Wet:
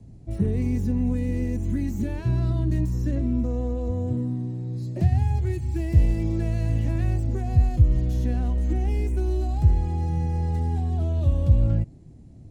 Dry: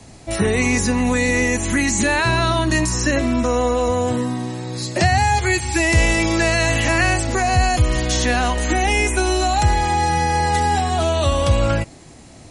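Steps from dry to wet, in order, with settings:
phase distortion by the signal itself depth 0.098 ms
drawn EQ curve 140 Hz 0 dB, 400 Hz −11 dB, 1,200 Hz −27 dB

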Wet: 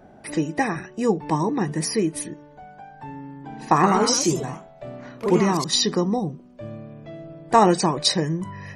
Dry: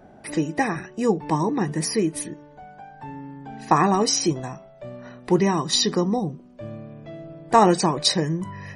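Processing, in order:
0:03.27–0:05.74: delay with pitch and tempo change per echo 170 ms, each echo +2 semitones, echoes 2, each echo −6 dB

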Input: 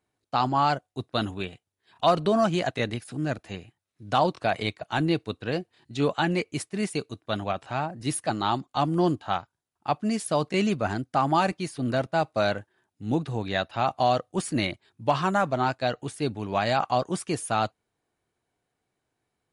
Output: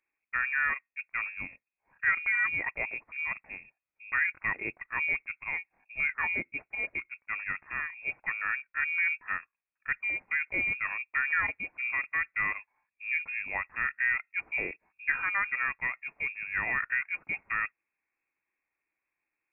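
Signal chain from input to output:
voice inversion scrambler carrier 2,600 Hz
level −6 dB

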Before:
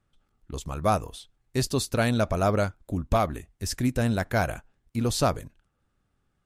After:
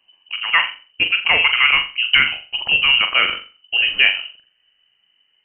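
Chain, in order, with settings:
gliding playback speed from 164% → 73%
voice inversion scrambler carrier 3,000 Hz
flutter between parallel walls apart 7.3 metres, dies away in 0.33 s
level +8 dB

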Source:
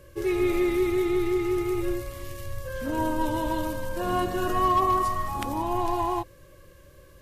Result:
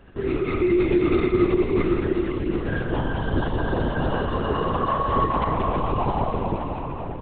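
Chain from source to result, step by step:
comb filter 2.5 ms, depth 68%
brickwall limiter −17.5 dBFS, peak gain reduction 7.5 dB
bouncing-ball delay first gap 180 ms, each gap 0.8×, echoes 5
comb and all-pass reverb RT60 4.8 s, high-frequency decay 0.55×, pre-delay 105 ms, DRR 1 dB
linear-prediction vocoder at 8 kHz whisper
level −1 dB

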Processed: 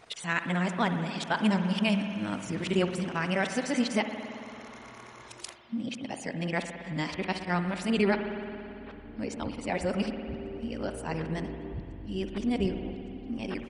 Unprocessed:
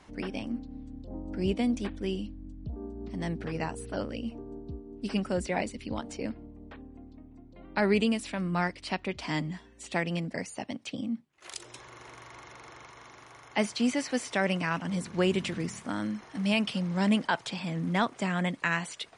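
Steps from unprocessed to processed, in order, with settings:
played backwards from end to start
tempo change 1.4×
spring reverb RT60 2.8 s, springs 56 ms, chirp 75 ms, DRR 6.5 dB

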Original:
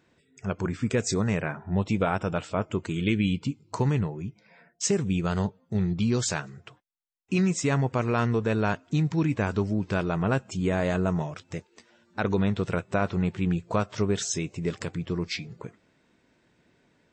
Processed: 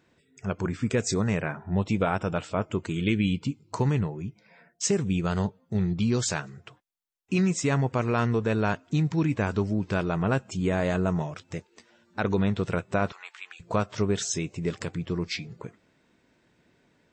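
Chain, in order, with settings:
0:13.12–0:13.60: high-pass filter 1,000 Hz 24 dB per octave

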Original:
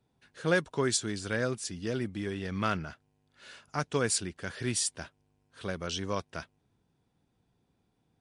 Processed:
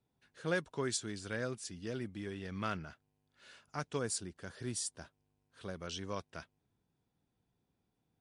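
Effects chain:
0:03.98–0:05.75: dynamic equaliser 2,400 Hz, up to −8 dB, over −51 dBFS, Q 1.2
level −7.5 dB

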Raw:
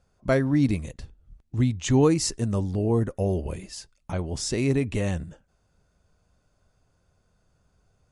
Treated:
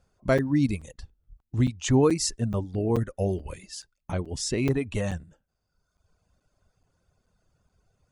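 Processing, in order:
reverb reduction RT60 1.1 s
regular buffer underruns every 0.43 s, samples 256, zero, from 0:00.38

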